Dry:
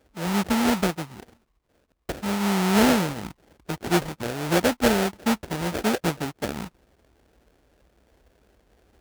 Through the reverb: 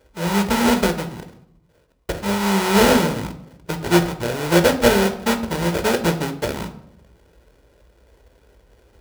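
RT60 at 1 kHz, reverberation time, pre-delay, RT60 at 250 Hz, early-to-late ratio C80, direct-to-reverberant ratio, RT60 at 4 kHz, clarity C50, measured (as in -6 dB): 0.70 s, 0.75 s, 17 ms, 0.95 s, 15.5 dB, 8.0 dB, 0.45 s, 12.5 dB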